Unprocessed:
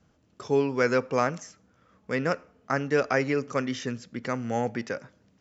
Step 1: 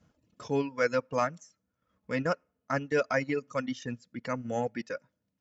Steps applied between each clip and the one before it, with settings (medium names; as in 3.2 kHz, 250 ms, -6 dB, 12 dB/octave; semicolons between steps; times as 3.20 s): comb of notches 390 Hz; reverb removal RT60 1.9 s; transient shaper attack -3 dB, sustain -7 dB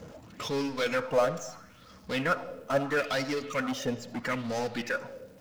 power-law waveshaper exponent 0.5; reverberation RT60 0.95 s, pre-delay 25 ms, DRR 11.5 dB; sweeping bell 0.76 Hz 460–5300 Hz +12 dB; trim -8 dB